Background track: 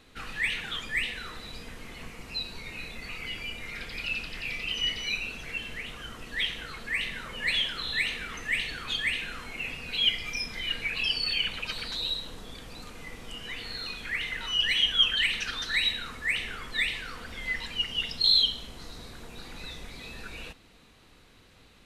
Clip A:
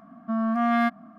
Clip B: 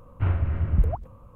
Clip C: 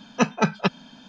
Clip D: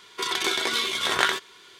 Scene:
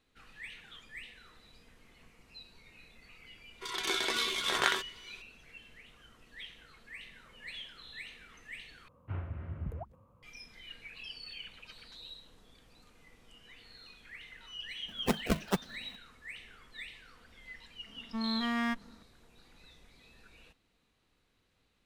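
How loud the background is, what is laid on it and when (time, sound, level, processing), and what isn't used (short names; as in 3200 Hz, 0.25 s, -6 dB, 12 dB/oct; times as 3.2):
background track -17.5 dB
3.43 add D -6.5 dB + opening faded in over 0.51 s
8.88 replace with B -12 dB + HPF 89 Hz
14.88 add C -9.5 dB + decimation with a swept rate 36× 2.6 Hz
17.85 add A -8 dB + minimum comb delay 0.57 ms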